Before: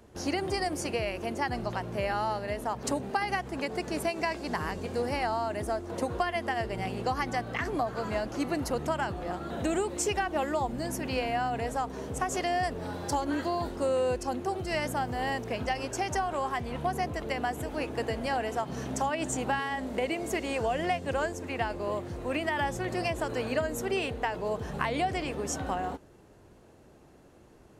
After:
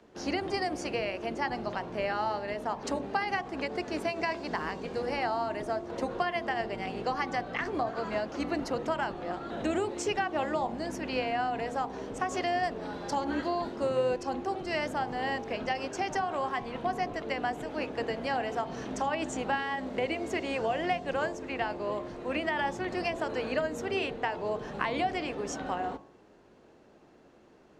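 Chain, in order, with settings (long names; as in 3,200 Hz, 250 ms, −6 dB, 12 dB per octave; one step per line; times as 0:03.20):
sub-octave generator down 2 octaves, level +2 dB
three-way crossover with the lows and the highs turned down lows −19 dB, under 170 Hz, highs −19 dB, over 6,300 Hz
hum removal 47.82 Hz, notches 24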